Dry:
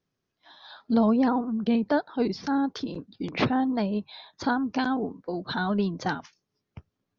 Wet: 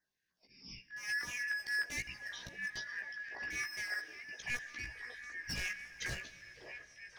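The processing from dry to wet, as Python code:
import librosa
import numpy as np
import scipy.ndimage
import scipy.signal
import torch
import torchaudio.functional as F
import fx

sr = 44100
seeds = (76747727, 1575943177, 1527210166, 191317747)

p1 = fx.band_shuffle(x, sr, order='2143')
p2 = fx.over_compress(p1, sr, threshold_db=-28.0, ratio=-0.5)
p3 = p1 + (p2 * librosa.db_to_amplitude(1.0))
p4 = fx.auto_swell(p3, sr, attack_ms=220.0)
p5 = fx.tremolo_random(p4, sr, seeds[0], hz=3.5, depth_pct=90)
p6 = np.clip(p5, -10.0 ** (-25.0 / 20.0), 10.0 ** (-25.0 / 20.0))
p7 = fx.filter_lfo_notch(p6, sr, shape='saw_down', hz=3.3, low_hz=670.0, high_hz=2900.0, q=0.75)
p8 = fx.doubler(p7, sr, ms=16.0, db=-4.5)
p9 = p8 + fx.echo_stepped(p8, sr, ms=554, hz=520.0, octaves=0.7, feedback_pct=70, wet_db=-1, dry=0)
p10 = fx.rev_plate(p9, sr, seeds[1], rt60_s=4.9, hf_ratio=0.85, predelay_ms=0, drr_db=15.0)
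y = p10 * librosa.db_to_amplitude(-7.5)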